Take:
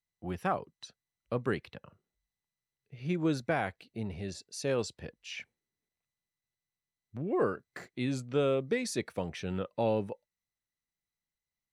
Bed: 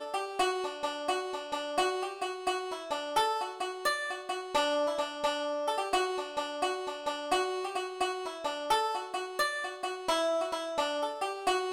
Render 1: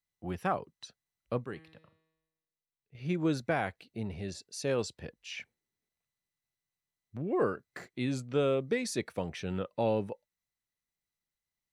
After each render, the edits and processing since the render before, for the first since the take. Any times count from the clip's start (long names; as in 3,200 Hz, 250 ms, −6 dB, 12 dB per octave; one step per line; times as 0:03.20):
0:01.44–0:02.95: tuned comb filter 160 Hz, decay 1.1 s, mix 70%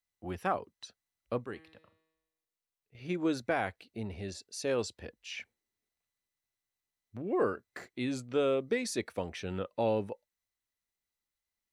parametric band 150 Hz −14 dB 0.35 octaves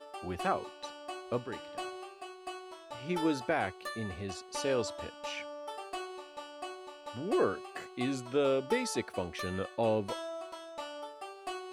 mix in bed −11 dB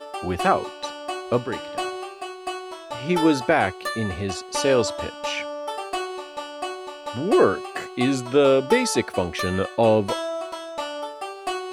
level +12 dB